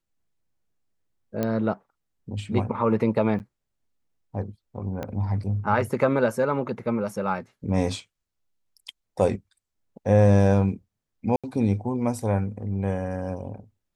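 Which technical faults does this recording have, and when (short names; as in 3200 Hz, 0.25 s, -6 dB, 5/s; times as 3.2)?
1.43 pop -13 dBFS
3.39–3.4 gap 9.2 ms
5.03 pop -18 dBFS
11.36–11.44 gap 76 ms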